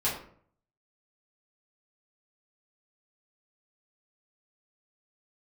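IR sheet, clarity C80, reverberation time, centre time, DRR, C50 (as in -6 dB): 9.5 dB, 0.55 s, 35 ms, -9.5 dB, 5.5 dB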